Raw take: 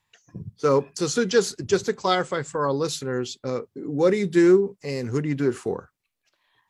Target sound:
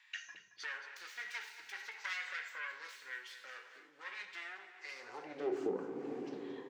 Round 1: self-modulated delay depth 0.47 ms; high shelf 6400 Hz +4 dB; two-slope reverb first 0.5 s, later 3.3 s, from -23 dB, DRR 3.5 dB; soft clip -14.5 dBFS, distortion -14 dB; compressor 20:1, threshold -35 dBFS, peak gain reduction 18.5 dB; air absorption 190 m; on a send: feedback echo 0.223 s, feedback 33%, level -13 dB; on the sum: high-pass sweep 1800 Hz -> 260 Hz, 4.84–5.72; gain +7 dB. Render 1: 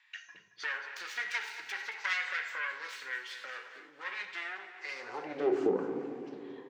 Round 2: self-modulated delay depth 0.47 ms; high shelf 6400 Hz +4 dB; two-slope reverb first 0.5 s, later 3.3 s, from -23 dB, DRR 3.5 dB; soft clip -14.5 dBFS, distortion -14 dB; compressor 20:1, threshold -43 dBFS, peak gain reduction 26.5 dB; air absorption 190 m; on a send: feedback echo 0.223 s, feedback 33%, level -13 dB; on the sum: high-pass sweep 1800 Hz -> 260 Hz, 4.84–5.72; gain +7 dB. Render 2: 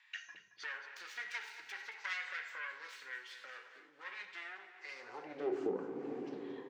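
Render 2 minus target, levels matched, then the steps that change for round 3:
8000 Hz band -3.0 dB
change: high shelf 6400 Hz +14.5 dB

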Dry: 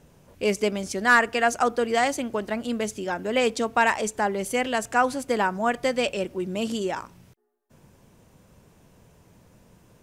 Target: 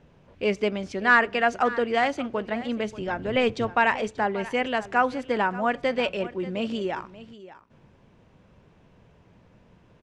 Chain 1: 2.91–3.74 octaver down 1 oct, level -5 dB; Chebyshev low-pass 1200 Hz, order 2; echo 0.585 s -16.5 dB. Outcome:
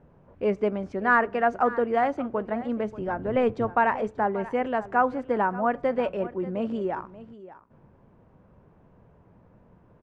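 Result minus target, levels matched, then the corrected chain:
4000 Hz band -14.0 dB
2.91–3.74 octaver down 1 oct, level -5 dB; Chebyshev low-pass 3000 Hz, order 2; echo 0.585 s -16.5 dB

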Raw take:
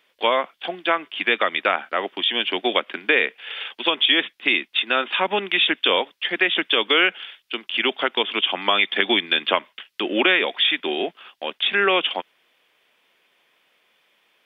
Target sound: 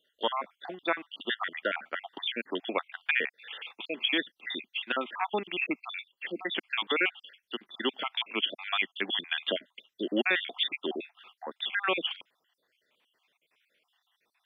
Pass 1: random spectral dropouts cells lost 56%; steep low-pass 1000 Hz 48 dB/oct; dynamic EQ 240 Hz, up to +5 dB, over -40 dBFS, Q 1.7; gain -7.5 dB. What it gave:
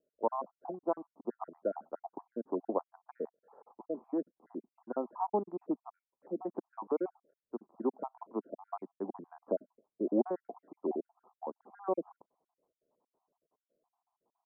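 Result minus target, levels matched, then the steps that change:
1000 Hz band +3.0 dB
remove: steep low-pass 1000 Hz 48 dB/oct

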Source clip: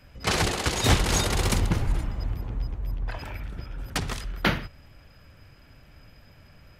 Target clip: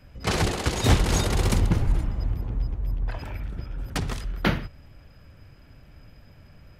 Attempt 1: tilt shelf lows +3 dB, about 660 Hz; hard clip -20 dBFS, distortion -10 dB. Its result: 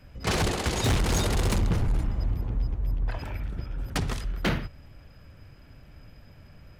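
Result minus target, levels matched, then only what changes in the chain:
hard clip: distortion +22 dB
change: hard clip -9 dBFS, distortion -32 dB

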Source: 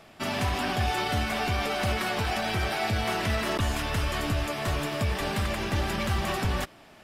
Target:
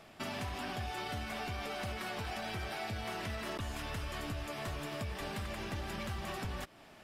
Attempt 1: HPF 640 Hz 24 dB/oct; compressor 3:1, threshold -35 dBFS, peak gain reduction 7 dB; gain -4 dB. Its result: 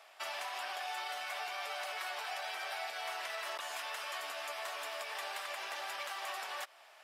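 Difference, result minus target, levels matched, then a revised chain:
500 Hz band -3.0 dB
compressor 3:1, threshold -35 dBFS, peak gain reduction 9.5 dB; gain -4 dB

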